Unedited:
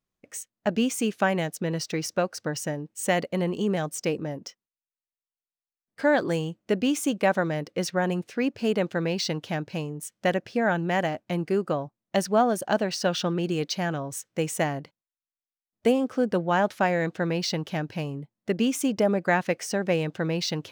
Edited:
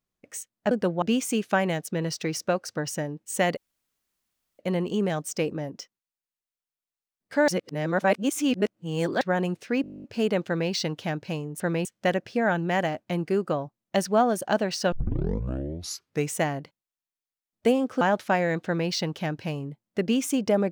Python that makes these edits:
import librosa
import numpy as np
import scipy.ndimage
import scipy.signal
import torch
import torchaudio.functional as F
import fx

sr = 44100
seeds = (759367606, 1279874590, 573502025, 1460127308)

y = fx.edit(x, sr, fx.insert_room_tone(at_s=3.26, length_s=1.02),
    fx.reverse_span(start_s=6.15, length_s=1.73),
    fx.stutter(start_s=8.49, slice_s=0.02, count=12),
    fx.tape_start(start_s=13.12, length_s=1.41),
    fx.move(start_s=16.21, length_s=0.31, to_s=0.71),
    fx.duplicate(start_s=17.16, length_s=0.25, to_s=10.05), tone=tone)